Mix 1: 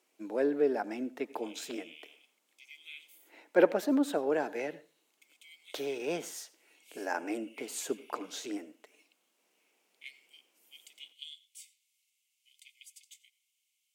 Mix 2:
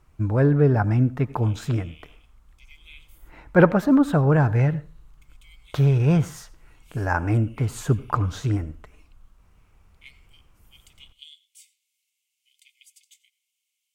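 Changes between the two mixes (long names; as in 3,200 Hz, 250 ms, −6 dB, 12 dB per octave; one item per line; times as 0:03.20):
speech: add parametric band 1,200 Hz +15 dB 1.2 octaves
master: remove Bessel high-pass filter 480 Hz, order 8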